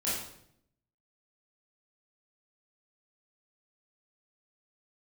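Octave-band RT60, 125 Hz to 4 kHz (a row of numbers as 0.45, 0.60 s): 0.95, 0.95, 0.75, 0.65, 0.60, 0.60 s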